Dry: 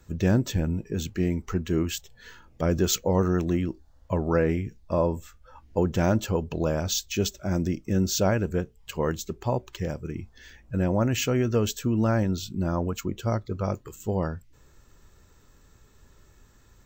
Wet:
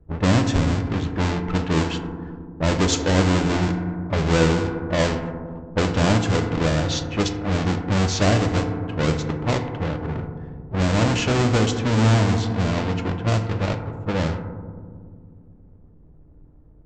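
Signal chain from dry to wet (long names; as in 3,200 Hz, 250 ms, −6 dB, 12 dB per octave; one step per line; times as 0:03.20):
each half-wave held at its own peak
elliptic low-pass filter 7,600 Hz, stop band 40 dB
feedback delay network reverb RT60 2.4 s, low-frequency decay 1.45×, high-frequency decay 0.35×, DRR 5 dB
low-pass that shuts in the quiet parts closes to 500 Hz, open at −15 dBFS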